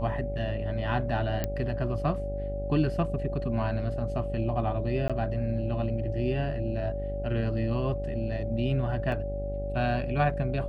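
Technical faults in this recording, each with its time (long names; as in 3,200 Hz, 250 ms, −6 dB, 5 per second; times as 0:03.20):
mains buzz 50 Hz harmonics 16 −34 dBFS
whistle 570 Hz −34 dBFS
0:01.44: click −14 dBFS
0:05.08–0:05.10: drop-out 16 ms
0:09.12: drop-out 2.1 ms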